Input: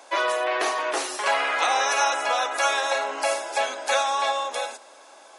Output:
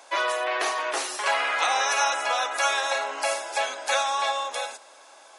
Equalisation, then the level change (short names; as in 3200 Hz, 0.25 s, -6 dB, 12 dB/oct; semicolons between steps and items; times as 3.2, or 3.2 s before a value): low shelf 480 Hz -8 dB; 0.0 dB